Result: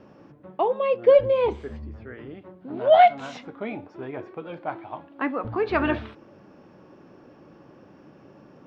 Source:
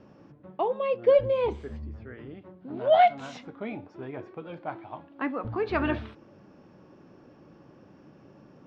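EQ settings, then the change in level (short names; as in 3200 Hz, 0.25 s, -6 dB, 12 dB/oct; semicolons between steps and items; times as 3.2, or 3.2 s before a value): tone controls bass -4 dB, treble -3 dB; +4.5 dB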